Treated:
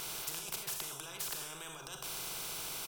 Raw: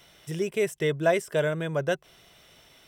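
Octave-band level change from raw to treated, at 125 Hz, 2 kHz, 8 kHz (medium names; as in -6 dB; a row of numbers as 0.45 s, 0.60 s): -21.5 dB, -13.5 dB, +5.5 dB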